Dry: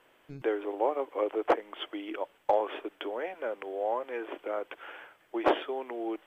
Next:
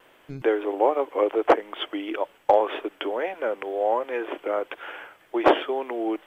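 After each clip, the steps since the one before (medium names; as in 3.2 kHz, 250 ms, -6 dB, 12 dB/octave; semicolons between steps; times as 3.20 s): wow and flutter 33 cents; trim +7.5 dB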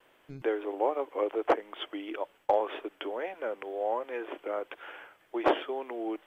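gate with hold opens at -49 dBFS; trim -7.5 dB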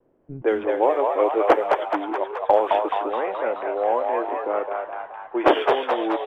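level-controlled noise filter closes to 350 Hz, open at -23.5 dBFS; on a send: frequency-shifting echo 213 ms, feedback 58%, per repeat +88 Hz, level -4 dB; on the sum: trim +8.5 dB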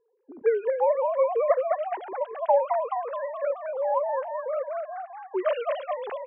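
formants replaced by sine waves; trim -4.5 dB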